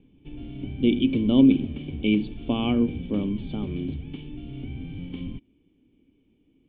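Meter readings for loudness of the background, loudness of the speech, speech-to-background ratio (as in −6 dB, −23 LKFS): −36.5 LKFS, −24.0 LKFS, 12.5 dB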